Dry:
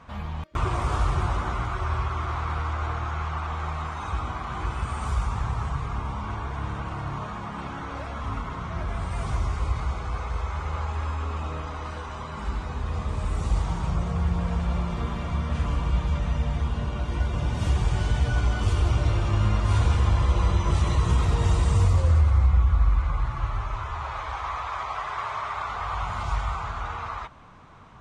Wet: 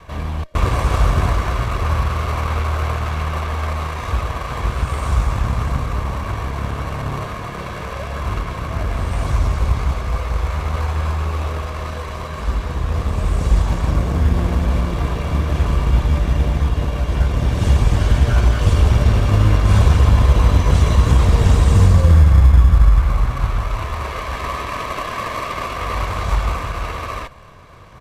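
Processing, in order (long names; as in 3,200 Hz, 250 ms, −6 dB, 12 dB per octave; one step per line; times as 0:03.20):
lower of the sound and its delayed copy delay 1.8 ms
in parallel at −8.5 dB: decimation without filtering 26×
on the sum: downsampling to 32,000 Hz
level +7 dB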